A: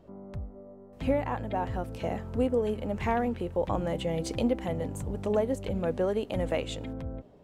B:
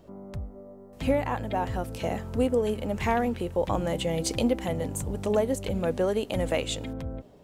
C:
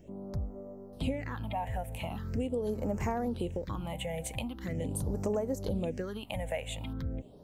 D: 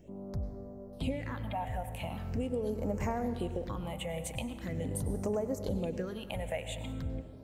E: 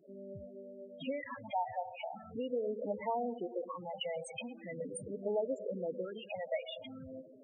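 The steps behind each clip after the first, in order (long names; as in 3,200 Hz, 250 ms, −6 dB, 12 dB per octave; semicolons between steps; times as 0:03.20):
high-shelf EQ 3,700 Hz +10 dB; level +2 dB
downward compressor, threshold −29 dBFS, peak gain reduction 10 dB; all-pass phaser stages 6, 0.42 Hz, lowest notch 320–3,500 Hz
convolution reverb RT60 1.8 s, pre-delay 88 ms, DRR 10 dB; level −1.5 dB
meter weighting curve A; spectral peaks only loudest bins 8; level +3.5 dB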